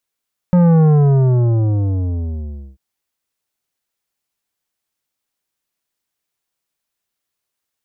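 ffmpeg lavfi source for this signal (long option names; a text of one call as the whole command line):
ffmpeg -f lavfi -i "aevalsrc='0.355*clip((2.24-t)/1.95,0,1)*tanh(3.55*sin(2*PI*180*2.24/log(65/180)*(exp(log(65/180)*t/2.24)-1)))/tanh(3.55)':duration=2.24:sample_rate=44100" out.wav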